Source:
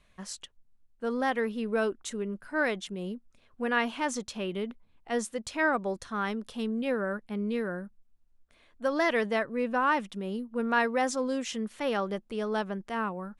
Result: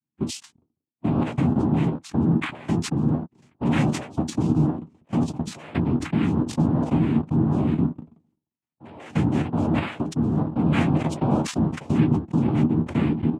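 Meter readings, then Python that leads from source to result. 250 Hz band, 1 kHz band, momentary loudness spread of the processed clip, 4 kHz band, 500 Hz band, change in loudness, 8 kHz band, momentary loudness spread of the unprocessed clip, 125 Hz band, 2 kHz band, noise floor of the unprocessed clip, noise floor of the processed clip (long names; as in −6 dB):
+11.5 dB, −1.0 dB, 8 LU, +1.5 dB, −1.0 dB, +7.5 dB, +1.5 dB, 10 LU, +23.0 dB, −5.0 dB, −65 dBFS, below −85 dBFS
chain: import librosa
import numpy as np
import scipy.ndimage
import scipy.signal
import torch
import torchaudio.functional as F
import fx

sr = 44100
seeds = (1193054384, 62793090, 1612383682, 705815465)

y = fx.noise_reduce_blind(x, sr, reduce_db=30)
y = fx.lowpass(y, sr, hz=2600.0, slope=6)
y = fx.low_shelf_res(y, sr, hz=300.0, db=13.0, q=3.0)
y = fx.level_steps(y, sr, step_db=21)
y = fx.noise_vocoder(y, sr, seeds[0], bands=4)
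y = fx.room_early_taps(y, sr, ms=(13, 25), db=(-8.0, -16.0))
y = fx.sustainer(y, sr, db_per_s=110.0)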